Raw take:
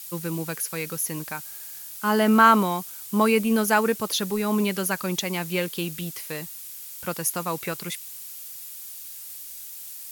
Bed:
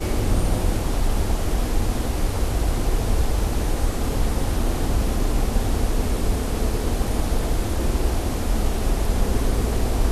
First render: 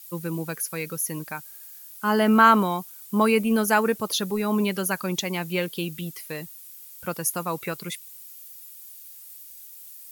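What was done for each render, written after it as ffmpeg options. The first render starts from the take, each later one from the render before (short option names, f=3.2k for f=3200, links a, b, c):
-af "afftdn=nr=9:nf=-40"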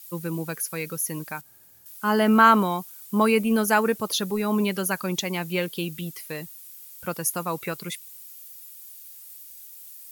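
-filter_complex "[0:a]asettb=1/sr,asplit=3[a][b][c];[a]atrim=end=1.414[d];[b]atrim=start=1.41:end=1.86,asetpts=PTS-STARTPTS,afade=t=in:d=0.004:c=qsin,afade=t=out:st=0.446:d=0.004:c=qsin,tiltshelf=f=860:g=10[e];[c]atrim=start=1.856[f];[d][e]acrossfade=d=0.004:c1=hsin:c2=qsin[g];[g][f]acrossfade=d=0.004:c1=qsin:c2=hsin"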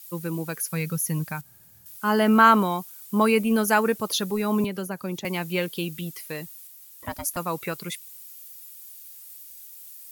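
-filter_complex "[0:a]asettb=1/sr,asplit=3[a][b][c];[a]atrim=end=0.694[d];[b]atrim=start=0.69:end=1.97,asetpts=PTS-STARTPTS,afade=t=in:d=0.004:c=qsin,afade=t=out:st=1.276:d=0.004:c=qsin,lowshelf=f=230:t=q:w=1.5:g=7.5[e];[c]atrim=start=1.966[f];[d][e]acrossfade=d=0.004:c1=hsin:c2=qsin[g];[g][f]acrossfade=d=0.004:c1=qsin:c2=hsin,asettb=1/sr,asplit=3[h][i][j];[h]atrim=end=4.644[k];[i]atrim=start=4.64:end=5.25,asetpts=PTS-STARTPTS,afade=t=in:d=0.004:c=qsin,afade=t=out:st=0.606:d=0.004:c=qsin,acrossover=split=280|790|1800[l][m][n][o];[l]acompressor=threshold=-32dB:ratio=3[p];[m]acompressor=threshold=-33dB:ratio=3[q];[n]acompressor=threshold=-46dB:ratio=3[r];[o]acompressor=threshold=-43dB:ratio=3[s];[p][q][r][s]amix=inputs=4:normalize=0[t];[j]atrim=start=5.246[u];[k][t]acrossfade=d=0.004:c1=hsin:c2=qsin[v];[v][u]acrossfade=d=0.004:c1=qsin:c2=hsin,asettb=1/sr,asplit=3[w][x][y];[w]atrim=end=6.674[z];[x]atrim=start=6.67:end=7.37,asetpts=PTS-STARTPTS,afade=t=in:d=0.004:c=qsin,afade=t=out:st=0.696:d=0.004:c=qsin,aeval=exprs='val(0)*sin(2*PI*430*n/s)':c=same[aa];[y]atrim=start=7.366[ab];[z][aa]acrossfade=d=0.004:c1=hsin:c2=qsin[ac];[ac][ab]acrossfade=d=0.004:c1=qsin:c2=hsin"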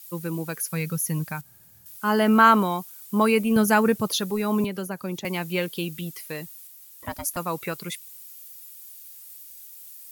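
-filter_complex "[0:a]asettb=1/sr,asplit=3[a][b][c];[a]atrim=end=3.564[d];[b]atrim=start=3.56:end=4.09,asetpts=PTS-STARTPTS,afade=t=in:d=0.004:c=qsin,afade=t=out:st=0.526:d=0.004:c=qsin,equalizer=f=120:w=1:g=13.5[e];[c]atrim=start=4.086[f];[d][e]acrossfade=d=0.004:c1=hsin:c2=qsin[g];[g][f]acrossfade=d=0.004:c1=qsin:c2=hsin"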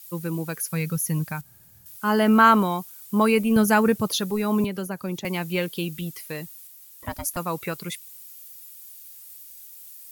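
-af "lowshelf=f=100:g=7"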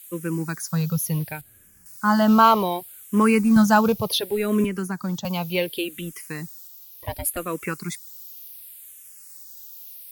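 -filter_complex "[0:a]asplit=2[a][b];[b]acrusher=bits=4:mode=log:mix=0:aa=0.000001,volume=-4dB[c];[a][c]amix=inputs=2:normalize=0,asplit=2[d][e];[e]afreqshift=-0.68[f];[d][f]amix=inputs=2:normalize=1"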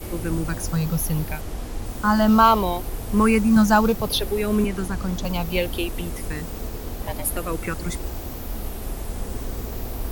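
-filter_complex "[1:a]volume=-9dB[a];[0:a][a]amix=inputs=2:normalize=0"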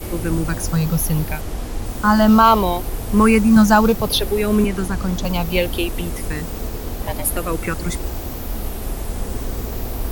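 -af "volume=4.5dB,alimiter=limit=-1dB:level=0:latency=1"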